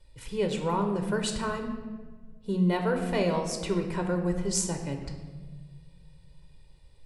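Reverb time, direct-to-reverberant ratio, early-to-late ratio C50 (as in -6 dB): 1.5 s, 4.0 dB, 7.0 dB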